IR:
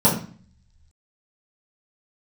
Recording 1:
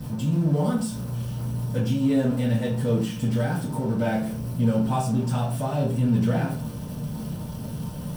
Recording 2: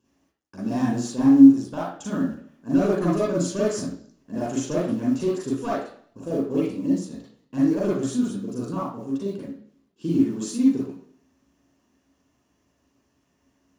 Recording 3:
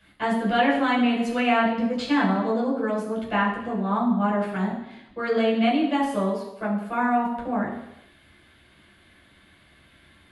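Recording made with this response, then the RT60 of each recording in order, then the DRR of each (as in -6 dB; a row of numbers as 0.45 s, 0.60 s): 1; 0.45 s, 0.55 s, 0.85 s; -9.5 dB, -6.5 dB, -7.0 dB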